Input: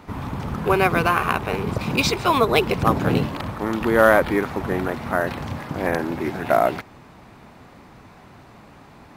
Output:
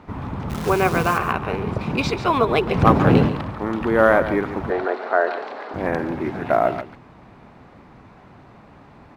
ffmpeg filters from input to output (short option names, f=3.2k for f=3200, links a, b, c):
-filter_complex "[0:a]aemphasis=mode=reproduction:type=75kf,asplit=3[a][b][c];[a]afade=t=out:st=0.49:d=0.02[d];[b]acrusher=bits=6:dc=4:mix=0:aa=0.000001,afade=t=in:st=0.49:d=0.02,afade=t=out:st=1.17:d=0.02[e];[c]afade=t=in:st=1.17:d=0.02[f];[d][e][f]amix=inputs=3:normalize=0,asettb=1/sr,asplit=3[g][h][i];[g]atrim=end=2.744[j];[h]atrim=start=2.74:end=3.29,asetpts=PTS-STARTPTS,afade=t=in:d=0.004:c=qsin,afade=t=out:st=0.546:d=0.004:c=qsin,acontrast=64[k];[i]atrim=start=3.286[l];[j][k]acrossfade=d=0.004:c1=hsin:c2=qsin[m];[m][l]acrossfade=d=0.004:c1=qsin:c2=hsin,asettb=1/sr,asplit=3[n][o][p];[n]atrim=end=4.704[q];[o]atrim=start=4.7:end=5.74,asetpts=PTS-STARTPTS,afade=t=in:d=0.004:c=qsin,afade=t=out:st=1.036:d=0.004:c=qsin,highpass=f=360:w=0.5412,highpass=f=360:w=1.3066,equalizer=f=420:t=q:w=4:g=8,equalizer=f=690:t=q:w=4:g=7,equalizer=f=1.5k:t=q:w=4:g=5,equalizer=f=4.2k:t=q:w=4:g=7,equalizer=f=6.4k:t=q:w=4:g=-5,lowpass=f=7.6k:w=0.5412,lowpass=f=7.6k:w=1.3066[r];[p]atrim=start=5.736[s];[q][r]acrossfade=d=0.004:c1=hsin:c2=qsin[t];[t][s]acrossfade=d=0.004:c1=qsin:c2=hsin,asplit=2[u][v];[v]aecho=0:1:142:0.251[w];[u][w]amix=inputs=2:normalize=0"